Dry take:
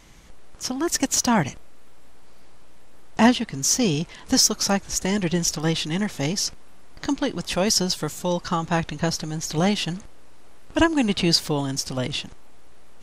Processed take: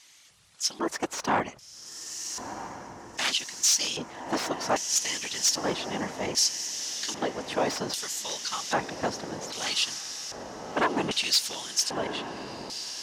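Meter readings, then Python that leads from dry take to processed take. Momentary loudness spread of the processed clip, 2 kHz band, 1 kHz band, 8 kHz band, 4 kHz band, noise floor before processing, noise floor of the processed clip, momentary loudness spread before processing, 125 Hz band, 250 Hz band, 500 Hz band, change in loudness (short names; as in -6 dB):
13 LU, -3.5 dB, -3.0 dB, -2.5 dB, -2.0 dB, -43 dBFS, -53 dBFS, 10 LU, -16.5 dB, -13.0 dB, -5.5 dB, -5.5 dB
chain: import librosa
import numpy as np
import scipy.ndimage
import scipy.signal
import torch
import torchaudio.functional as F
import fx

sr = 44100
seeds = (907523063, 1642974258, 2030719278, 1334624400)

p1 = fx.high_shelf(x, sr, hz=7100.0, db=11.0)
p2 = fx.whisperise(p1, sr, seeds[0])
p3 = p2 + fx.echo_diffused(p2, sr, ms=1269, feedback_pct=70, wet_db=-11.5, dry=0)
p4 = 10.0 ** (-13.5 / 20.0) * (np.abs((p3 / 10.0 ** (-13.5 / 20.0) + 3.0) % 4.0 - 2.0) - 1.0)
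y = fx.filter_lfo_bandpass(p4, sr, shape='square', hz=0.63, low_hz=870.0, high_hz=4200.0, q=0.81)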